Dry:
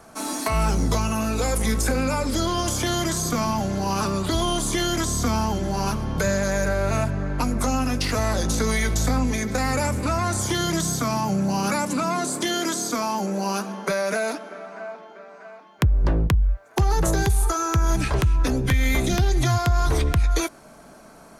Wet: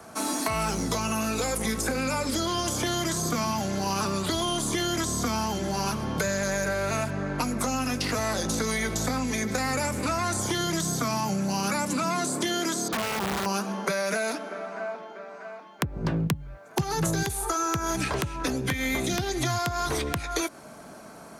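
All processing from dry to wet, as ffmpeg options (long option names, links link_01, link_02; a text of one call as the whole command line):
ffmpeg -i in.wav -filter_complex "[0:a]asettb=1/sr,asplit=3[link_01][link_02][link_03];[link_01]atrim=end=12.884[link_04];[link_02]atrim=start=12.88:end=13.46,asetpts=PTS-STARTPTS,afade=type=in:duration=0.004:curve=qsin,afade=type=out:start_time=0.576:duration=0.004:curve=qsin,lowpass=frequency=4800:width=0.5412,lowpass=frequency=4800:width=1.3066,aemphasis=mode=reproduction:type=75kf,aeval=exprs='(mod(11.2*val(0)+1,2)-1)/11.2':channel_layout=same[link_05];[link_03]atrim=start=13.456[link_06];[link_04][link_05]acrossfade=duration=0.004:curve1=hsin:curve2=qsin[link_07];[link_07][link_06]acrossfade=duration=0.004:curve1=qsin:curve2=hsin,asettb=1/sr,asplit=3[link_08][link_09][link_10];[link_08]atrim=end=15.964[link_11];[link_09]atrim=start=15.96:end=17.23,asetpts=PTS-STARTPTS,afade=type=in:duration=0.004:curve=qsin,afade=type=out:start_time=1.266:duration=0.004:curve=qsin,equalizer=frequency=150:width_type=o:width=1.2:gain=13,bandreject=frequency=1900:width=19[link_12];[link_10]atrim=start=17.226[link_13];[link_11][link_12]acrossfade=duration=0.004:curve1=hsin:curve2=qsin[link_14];[link_14][link_13]acrossfade=duration=0.004:curve1=qsin:curve2=hsin,highpass=73,bandreject=frequency=283.7:width_type=h:width=4,bandreject=frequency=567.4:width_type=h:width=4,bandreject=frequency=851.1:width_type=h:width=4,acrossover=split=160|1500[link_15][link_16][link_17];[link_15]acompressor=threshold=-40dB:ratio=4[link_18];[link_16]acompressor=threshold=-30dB:ratio=4[link_19];[link_17]acompressor=threshold=-32dB:ratio=4[link_20];[link_18][link_19][link_20]amix=inputs=3:normalize=0,volume=2dB" out.wav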